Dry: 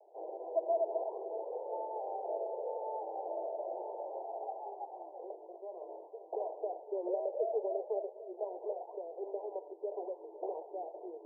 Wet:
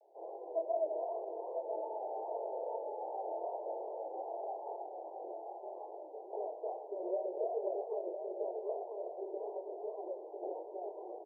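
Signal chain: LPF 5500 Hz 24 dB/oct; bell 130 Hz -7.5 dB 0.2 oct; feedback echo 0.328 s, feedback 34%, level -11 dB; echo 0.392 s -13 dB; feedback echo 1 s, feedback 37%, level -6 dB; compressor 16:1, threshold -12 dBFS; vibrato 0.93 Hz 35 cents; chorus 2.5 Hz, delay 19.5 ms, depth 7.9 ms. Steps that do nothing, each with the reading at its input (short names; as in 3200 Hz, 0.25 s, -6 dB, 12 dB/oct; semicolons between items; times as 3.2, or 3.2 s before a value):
LPF 5500 Hz: input band ends at 1000 Hz; bell 130 Hz: input band starts at 300 Hz; compressor, threshold -12 dBFS: input peak -21.5 dBFS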